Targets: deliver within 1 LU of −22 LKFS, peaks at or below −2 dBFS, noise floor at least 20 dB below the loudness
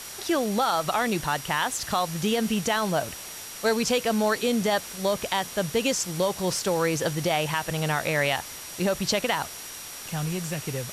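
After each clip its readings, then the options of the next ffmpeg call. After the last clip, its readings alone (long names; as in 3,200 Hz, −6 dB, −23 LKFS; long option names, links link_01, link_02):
interfering tone 5,700 Hz; level of the tone −45 dBFS; background noise floor −40 dBFS; target noise floor −46 dBFS; integrated loudness −26.0 LKFS; sample peak −11.0 dBFS; target loudness −22.0 LKFS
→ -af "bandreject=frequency=5700:width=30"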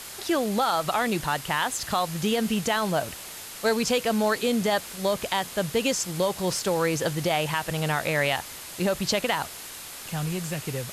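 interfering tone none found; background noise floor −40 dBFS; target noise floor −46 dBFS
→ -af "afftdn=noise_reduction=6:noise_floor=-40"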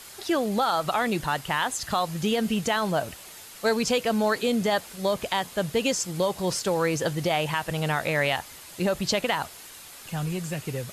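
background noise floor −45 dBFS; target noise floor −47 dBFS
→ -af "afftdn=noise_reduction=6:noise_floor=-45"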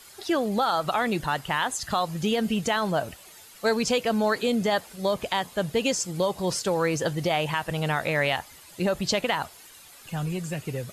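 background noise floor −49 dBFS; integrated loudness −26.5 LKFS; sample peak −11.0 dBFS; target loudness −22.0 LKFS
→ -af "volume=4.5dB"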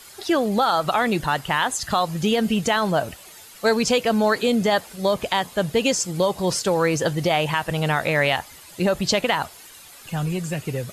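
integrated loudness −22.0 LKFS; sample peak −6.5 dBFS; background noise floor −45 dBFS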